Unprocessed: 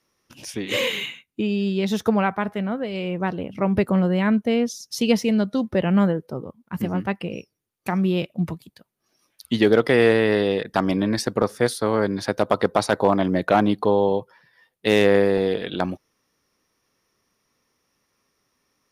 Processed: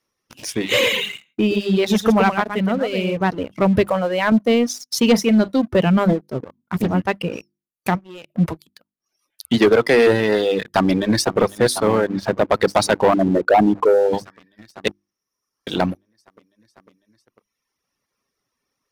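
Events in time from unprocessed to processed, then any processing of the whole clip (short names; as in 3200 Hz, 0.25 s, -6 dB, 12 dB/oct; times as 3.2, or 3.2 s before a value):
0.66–3.17 echo 0.118 s -5 dB
3.86–4.32 resonant low shelf 400 Hz -8 dB, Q 1.5
5.03–5.54 doubler 42 ms -13 dB
6.08–6.91 Doppler distortion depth 0.59 ms
7.95–8.35 compressor 20:1, threshold -33 dBFS
9.55–10.06 HPF 79 Hz -> 180 Hz 24 dB/oct
10.6–11.41 echo throw 0.5 s, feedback 80%, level -11.5 dB
12.01–12.54 LPF 1600 Hz 6 dB/oct
13.14–14.13 formant sharpening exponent 2
14.88–15.67 room tone
whole clip: notches 50/100/150/200/250/300/350 Hz; reverb removal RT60 0.98 s; sample leveller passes 2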